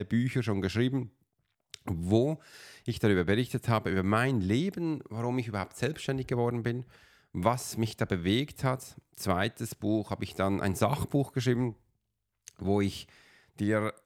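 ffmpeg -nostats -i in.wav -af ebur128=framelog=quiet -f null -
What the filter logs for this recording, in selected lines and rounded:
Integrated loudness:
  I:         -30.5 LUFS
  Threshold: -41.1 LUFS
Loudness range:
  LRA:         2.8 LU
  Threshold: -51.1 LUFS
  LRA low:   -32.3 LUFS
  LRA high:  -29.6 LUFS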